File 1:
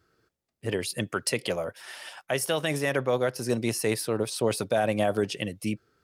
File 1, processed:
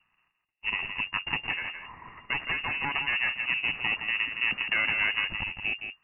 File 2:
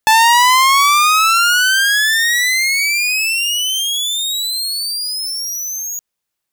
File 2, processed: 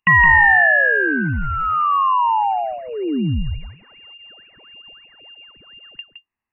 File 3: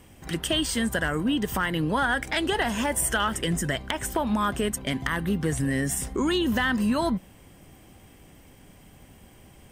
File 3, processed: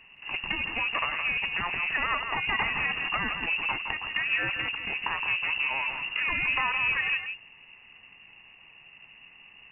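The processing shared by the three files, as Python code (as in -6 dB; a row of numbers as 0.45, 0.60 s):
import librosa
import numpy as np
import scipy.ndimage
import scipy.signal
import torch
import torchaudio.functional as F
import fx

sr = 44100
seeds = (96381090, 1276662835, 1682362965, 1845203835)

y = fx.lower_of_two(x, sr, delay_ms=1.1)
y = fx.freq_invert(y, sr, carrier_hz=2800)
y = y + 10.0 ** (-7.5 / 20.0) * np.pad(y, (int(166 * sr / 1000.0), 0))[:len(y)]
y = y * 10.0 ** (-1.0 / 20.0)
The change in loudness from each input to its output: +0.5, -3.0, -1.5 LU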